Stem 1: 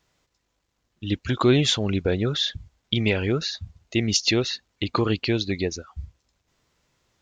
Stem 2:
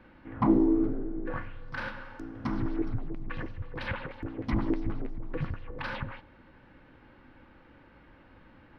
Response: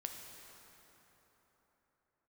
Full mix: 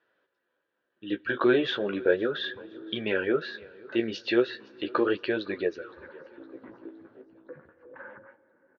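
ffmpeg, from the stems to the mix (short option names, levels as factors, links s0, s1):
-filter_complex "[0:a]bandreject=f=2100:w=5.6,volume=1.19,asplit=4[s0][s1][s2][s3];[s1]volume=0.126[s4];[s2]volume=0.0708[s5];[1:a]lowpass=1100,acompressor=threshold=0.0282:ratio=4,adelay=2150,volume=0.75[s6];[s3]apad=whole_len=482118[s7];[s6][s7]sidechaincompress=threshold=0.0282:ratio=8:attack=16:release=627[s8];[2:a]atrim=start_sample=2205[s9];[s4][s9]afir=irnorm=-1:irlink=0[s10];[s5]aecho=0:1:514|1028|1542|2056|2570|3084:1|0.44|0.194|0.0852|0.0375|0.0165[s11];[s0][s8][s10][s11]amix=inputs=4:normalize=0,flanger=delay=8.6:depth=9.4:regen=-25:speed=0.36:shape=triangular,highpass=360,equalizer=f=370:t=q:w=4:g=5,equalizer=f=540:t=q:w=4:g=6,equalizer=f=760:t=q:w=4:g=-6,equalizer=f=1100:t=q:w=4:g=-4,equalizer=f=1600:t=q:w=4:g=10,equalizer=f=2600:t=q:w=4:g=-5,lowpass=f=2900:w=0.5412,lowpass=f=2900:w=1.3066"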